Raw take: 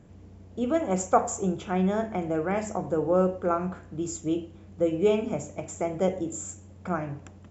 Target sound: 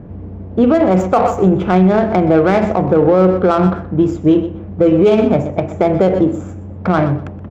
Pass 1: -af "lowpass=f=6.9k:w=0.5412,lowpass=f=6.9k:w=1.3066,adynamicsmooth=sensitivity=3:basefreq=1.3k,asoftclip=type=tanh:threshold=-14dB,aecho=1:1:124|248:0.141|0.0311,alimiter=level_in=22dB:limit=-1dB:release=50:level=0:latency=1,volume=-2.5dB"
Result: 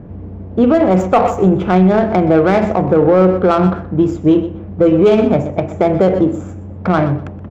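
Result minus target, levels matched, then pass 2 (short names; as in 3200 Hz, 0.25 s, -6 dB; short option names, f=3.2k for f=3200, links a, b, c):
soft clip: distortion +16 dB
-af "lowpass=f=6.9k:w=0.5412,lowpass=f=6.9k:w=1.3066,adynamicsmooth=sensitivity=3:basefreq=1.3k,asoftclip=type=tanh:threshold=-4.5dB,aecho=1:1:124|248:0.141|0.0311,alimiter=level_in=22dB:limit=-1dB:release=50:level=0:latency=1,volume=-2.5dB"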